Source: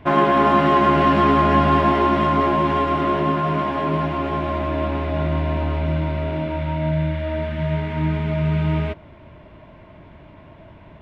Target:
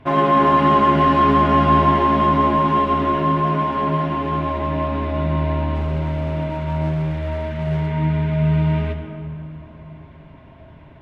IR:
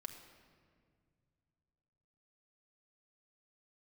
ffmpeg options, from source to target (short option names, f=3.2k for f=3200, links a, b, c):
-filter_complex "[0:a]asettb=1/sr,asplit=3[a][b][c];[a]atrim=end=5.754[d];[b]atrim=start=5.75:end=7.92,asetpts=PTS-STARTPTS,afade=t=in:d=0.004:c=qsin,afade=t=out:st=2.166:d=0.004:c=qsin,volume=20.5dB,asoftclip=hard,volume=-20.5dB[e];[c]atrim=start=7.916[f];[d][e]acrossfade=d=0.004:c1=hsin:c2=qsin[g];[g][f]acrossfade=d=0.004:c1=qsin:c2=hsin[h];[1:a]atrim=start_sample=2205,asetrate=27783,aresample=44100[i];[h][i]afir=irnorm=-1:irlink=0"